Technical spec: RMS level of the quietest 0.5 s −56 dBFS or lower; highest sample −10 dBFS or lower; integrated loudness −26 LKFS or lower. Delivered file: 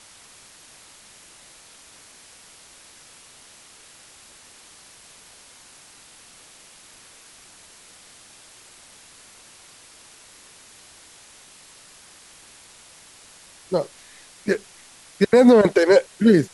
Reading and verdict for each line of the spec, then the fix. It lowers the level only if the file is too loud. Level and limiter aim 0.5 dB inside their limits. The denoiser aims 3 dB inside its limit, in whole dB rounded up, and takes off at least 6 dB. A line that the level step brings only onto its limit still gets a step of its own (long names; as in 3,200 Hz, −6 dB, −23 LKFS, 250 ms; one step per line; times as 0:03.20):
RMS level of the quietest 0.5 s −49 dBFS: out of spec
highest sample −4.5 dBFS: out of spec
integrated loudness −18.0 LKFS: out of spec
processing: level −8.5 dB